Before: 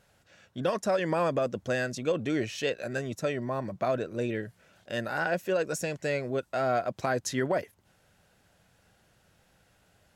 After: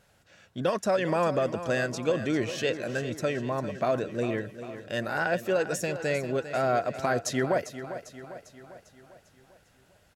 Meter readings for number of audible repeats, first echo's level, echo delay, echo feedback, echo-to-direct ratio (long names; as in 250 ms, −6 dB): 5, −12.0 dB, 399 ms, 53%, −10.5 dB